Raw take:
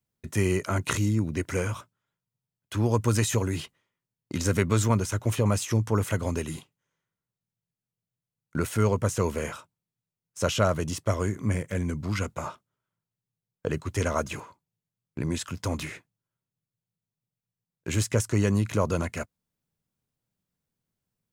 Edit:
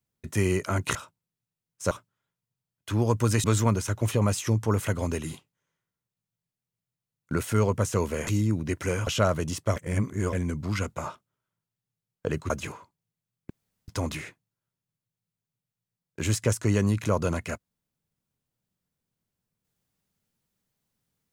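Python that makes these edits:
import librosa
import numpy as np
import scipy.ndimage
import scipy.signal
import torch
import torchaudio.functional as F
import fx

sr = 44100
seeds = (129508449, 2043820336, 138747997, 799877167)

y = fx.edit(x, sr, fx.swap(start_s=0.95, length_s=0.8, other_s=9.51, other_length_s=0.96),
    fx.cut(start_s=3.28, length_s=1.4),
    fx.reverse_span(start_s=11.16, length_s=0.57),
    fx.cut(start_s=13.9, length_s=0.28),
    fx.room_tone_fill(start_s=15.18, length_s=0.38), tone=tone)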